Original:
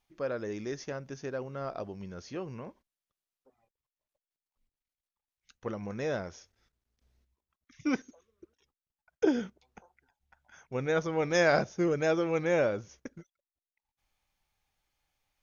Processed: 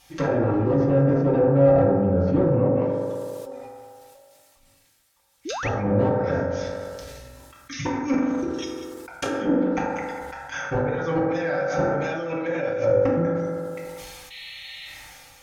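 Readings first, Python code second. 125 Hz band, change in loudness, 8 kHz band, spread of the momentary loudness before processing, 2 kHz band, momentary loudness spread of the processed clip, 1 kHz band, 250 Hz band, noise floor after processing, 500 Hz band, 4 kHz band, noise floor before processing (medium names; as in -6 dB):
+16.0 dB, +8.5 dB, no reading, 16 LU, +4.5 dB, 18 LU, +10.0 dB, +11.5 dB, -59 dBFS, +10.5 dB, +6.5 dB, under -85 dBFS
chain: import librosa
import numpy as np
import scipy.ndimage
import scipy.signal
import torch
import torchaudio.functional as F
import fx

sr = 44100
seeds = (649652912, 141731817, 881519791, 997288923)

y = fx.high_shelf(x, sr, hz=2300.0, db=8.5)
y = fx.hum_notches(y, sr, base_hz=60, count=6)
y = y + 10.0 ** (-15.5 / 20.0) * np.pad(y, (int(189 * sr / 1000.0), 0))[:len(y)]
y = fx.gate_flip(y, sr, shuts_db=-21.0, range_db=-29)
y = fx.fold_sine(y, sr, drive_db=15, ceiling_db=-20.5)
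y = fx.env_lowpass_down(y, sr, base_hz=640.0, full_db=-23.5)
y = fx.notch_comb(y, sr, f0_hz=210.0)
y = fx.spec_paint(y, sr, seeds[0], shape='noise', start_s=14.3, length_s=0.57, low_hz=1800.0, high_hz=4300.0, level_db=-44.0)
y = fx.rev_fdn(y, sr, rt60_s=1.5, lf_ratio=0.75, hf_ratio=0.3, size_ms=11.0, drr_db=-5.0)
y = fx.spec_paint(y, sr, seeds[1], shape='rise', start_s=5.45, length_s=0.24, low_hz=270.0, high_hz=2900.0, level_db=-32.0)
y = fx.sustainer(y, sr, db_per_s=22.0)
y = y * 10.0 ** (1.0 / 20.0)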